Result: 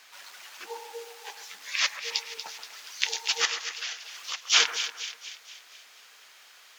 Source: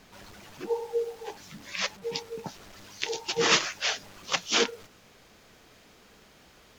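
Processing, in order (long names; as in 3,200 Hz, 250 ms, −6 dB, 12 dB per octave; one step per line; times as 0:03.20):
high-pass filter 1,300 Hz 12 dB per octave
0:03.45–0:04.50: downward compressor 10 to 1, threshold −38 dBFS, peak gain reduction 20 dB
on a send: echo with a time of its own for lows and highs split 1,900 Hz, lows 132 ms, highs 238 ms, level −10 dB
on the sum: level +5.5 dB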